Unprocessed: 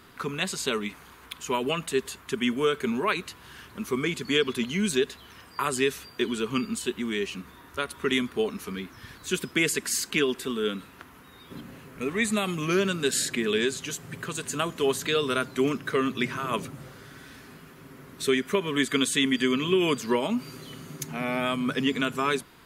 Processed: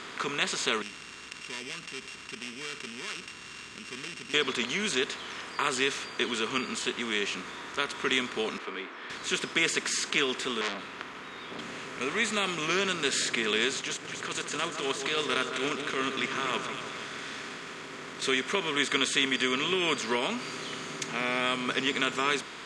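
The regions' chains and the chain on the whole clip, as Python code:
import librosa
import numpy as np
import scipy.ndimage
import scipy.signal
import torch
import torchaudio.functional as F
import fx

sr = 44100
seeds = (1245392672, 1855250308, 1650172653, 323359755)

y = fx.chain(x, sr, fx.sample_sort(block=16),
    fx.tone_stack(knobs='6-0-2'),
    fx.env_flatten(amount_pct=50), at=(0.82, 4.34))
y = fx.chain(y, sr, fx.highpass(hz=300.0, slope=24),
    fx.quant_float(bits=2),
    fx.air_absorb(metres=500.0), at=(8.58, 9.1))
y = fx.chain(y, sr, fx.peak_eq(hz=7900.0, db=-12.5, octaves=1.3),
    fx.transformer_sat(knee_hz=3200.0), at=(10.61, 11.59))
y = fx.chain(y, sr, fx.transient(attack_db=-12, sustain_db=-8),
    fx.echo_split(split_hz=1600.0, low_ms=152, high_ms=237, feedback_pct=52, wet_db=-11.0), at=(13.81, 18.22))
y = fx.bin_compress(y, sr, power=0.6)
y = scipy.signal.sosfilt(scipy.signal.butter(4, 7300.0, 'lowpass', fs=sr, output='sos'), y)
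y = fx.low_shelf(y, sr, hz=460.0, db=-11.0)
y = F.gain(torch.from_numpy(y), -2.5).numpy()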